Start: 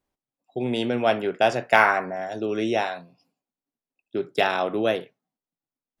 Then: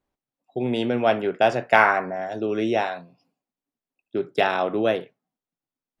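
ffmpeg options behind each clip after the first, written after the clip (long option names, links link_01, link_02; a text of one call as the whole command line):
ffmpeg -i in.wav -af "highshelf=frequency=4300:gain=-8.5,volume=1.5dB" out.wav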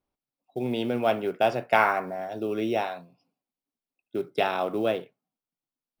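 ffmpeg -i in.wav -af "acrusher=bits=8:mode=log:mix=0:aa=0.000001,superequalizer=11b=0.631:15b=0.501,volume=-4dB" out.wav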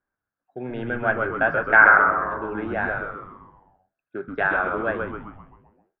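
ffmpeg -i in.wav -filter_complex "[0:a]lowpass=frequency=1600:width_type=q:width=14,asplit=2[link_01][link_02];[link_02]asplit=7[link_03][link_04][link_05][link_06][link_07][link_08][link_09];[link_03]adelay=130,afreqshift=-120,volume=-4dB[link_10];[link_04]adelay=260,afreqshift=-240,volume=-9.7dB[link_11];[link_05]adelay=390,afreqshift=-360,volume=-15.4dB[link_12];[link_06]adelay=520,afreqshift=-480,volume=-21dB[link_13];[link_07]adelay=650,afreqshift=-600,volume=-26.7dB[link_14];[link_08]adelay=780,afreqshift=-720,volume=-32.4dB[link_15];[link_09]adelay=910,afreqshift=-840,volume=-38.1dB[link_16];[link_10][link_11][link_12][link_13][link_14][link_15][link_16]amix=inputs=7:normalize=0[link_17];[link_01][link_17]amix=inputs=2:normalize=0,volume=-3.5dB" out.wav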